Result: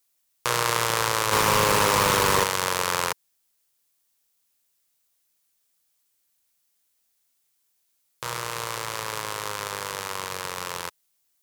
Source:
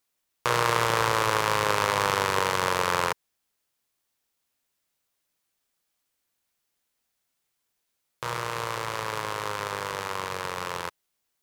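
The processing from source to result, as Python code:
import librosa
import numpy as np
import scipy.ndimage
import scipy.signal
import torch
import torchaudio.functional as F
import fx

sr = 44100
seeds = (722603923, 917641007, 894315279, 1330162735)

y = fx.high_shelf(x, sr, hz=4100.0, db=11.0)
y = fx.fuzz(y, sr, gain_db=31.0, gate_db=-37.0, at=(1.31, 2.43), fade=0.02)
y = y * 10.0 ** (-2.0 / 20.0)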